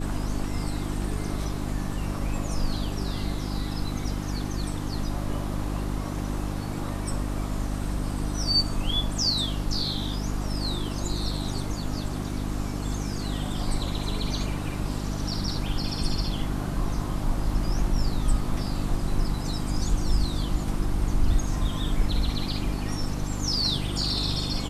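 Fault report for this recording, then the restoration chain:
hum 50 Hz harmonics 6 -31 dBFS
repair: de-hum 50 Hz, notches 6

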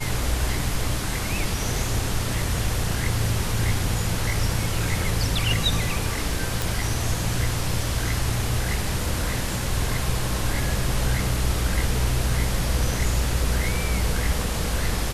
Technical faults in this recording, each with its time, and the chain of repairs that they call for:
6.62 pop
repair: de-click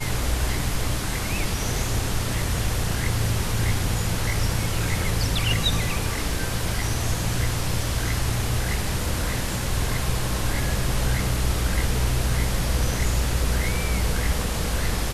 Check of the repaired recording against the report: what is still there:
none

